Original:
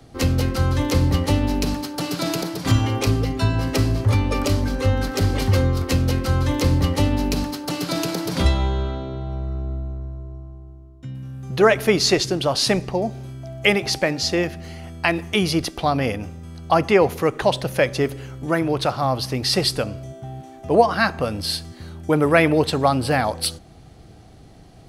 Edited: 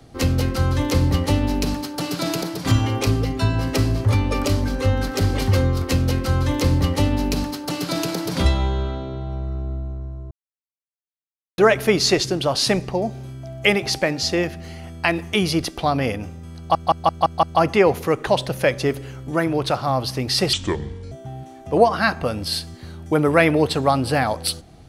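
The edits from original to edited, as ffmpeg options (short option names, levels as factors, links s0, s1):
-filter_complex "[0:a]asplit=10[s0][s1][s2][s3][s4][s5][s6][s7][s8][s9];[s0]atrim=end=10.31,asetpts=PTS-STARTPTS,afade=t=out:st=10.306:d=0.004:c=hsin[s10];[s1]atrim=start=10.31:end=11.58,asetpts=PTS-STARTPTS,volume=0[s11];[s2]atrim=start=11.58:end=16.752,asetpts=PTS-STARTPTS,afade=t=in:d=0.004:c=hsin[s12];[s3]atrim=start=16.578:end=16.752[s13];[s4]atrim=start=16.578:end=16.752[s14];[s5]atrim=start=16.578:end=16.752[s15];[s6]atrim=start=16.578:end=16.752[s16];[s7]atrim=start=16.578:end=19.684[s17];[s8]atrim=start=19.68:end=20.09,asetpts=PTS-STARTPTS,asetrate=30870,aresample=44100[s18];[s9]atrim=start=20.086[s19];[s10][s11][s12]concat=n=3:v=0:a=1[s20];[s20][s13]acrossfade=d=0.004:c1=hsin:c2=hsin[s21];[s21][s14]acrossfade=d=0.004:c1=hsin:c2=hsin[s22];[s22][s15]acrossfade=d=0.004:c1=hsin:c2=hsin[s23];[s23][s16]acrossfade=d=0.004:c1=hsin:c2=hsin[s24];[s24][s17]acrossfade=d=0.004:c1=hsin:c2=hsin[s25];[s25][s18]acrossfade=d=0.004:c1=hsin:c2=hsin[s26];[s26][s19]acrossfade=d=0.004:c1=hsin:c2=hsin"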